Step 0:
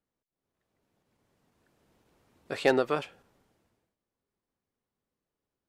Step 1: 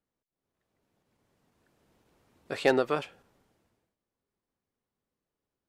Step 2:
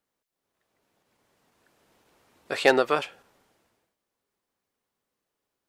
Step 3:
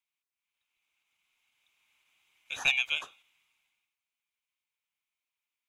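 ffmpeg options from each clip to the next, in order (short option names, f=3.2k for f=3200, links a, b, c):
-af anull
-af "lowshelf=f=320:g=-11.5,volume=7.5dB"
-af "afftfilt=real='real(if(lt(b,920),b+92*(1-2*mod(floor(b/92),2)),b),0)':imag='imag(if(lt(b,920),b+92*(1-2*mod(floor(b/92),2)),b),0)':win_size=2048:overlap=0.75,lowshelf=f=710:t=q:w=1.5:g=-8,volume=-8dB"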